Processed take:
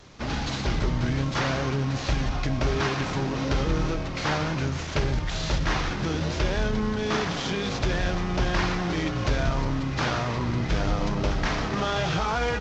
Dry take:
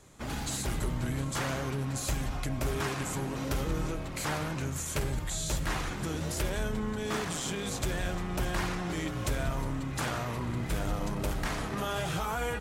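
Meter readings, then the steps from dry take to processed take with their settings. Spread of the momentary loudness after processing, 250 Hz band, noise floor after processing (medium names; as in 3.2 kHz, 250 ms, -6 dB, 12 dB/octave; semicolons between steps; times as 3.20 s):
2 LU, +6.5 dB, -31 dBFS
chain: CVSD coder 32 kbps; trim +7 dB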